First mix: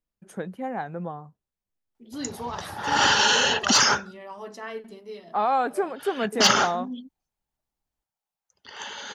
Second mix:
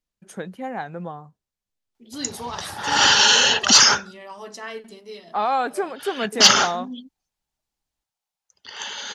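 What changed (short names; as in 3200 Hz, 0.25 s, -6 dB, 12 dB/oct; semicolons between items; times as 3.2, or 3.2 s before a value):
second voice: add bell 8400 Hz +5 dB 0.71 oct; master: add bell 5000 Hz +7.5 dB 2.6 oct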